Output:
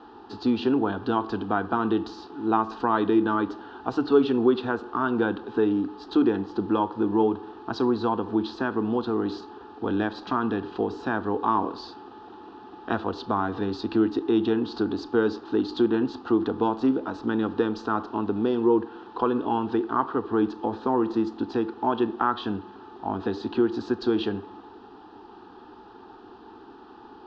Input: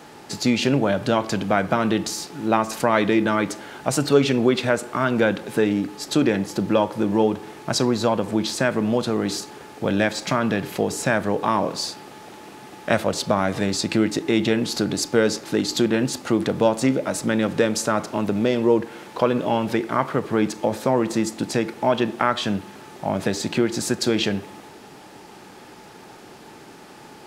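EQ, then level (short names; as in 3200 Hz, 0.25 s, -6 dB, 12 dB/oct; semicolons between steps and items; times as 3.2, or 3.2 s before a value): LPF 4000 Hz 24 dB/oct; air absorption 150 m; fixed phaser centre 580 Hz, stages 6; 0.0 dB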